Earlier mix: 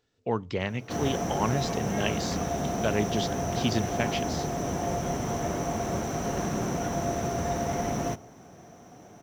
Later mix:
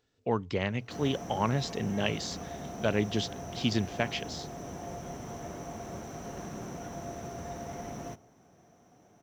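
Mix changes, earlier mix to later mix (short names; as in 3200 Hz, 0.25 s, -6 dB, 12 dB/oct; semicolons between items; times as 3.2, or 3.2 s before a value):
speech: send off; background -11.0 dB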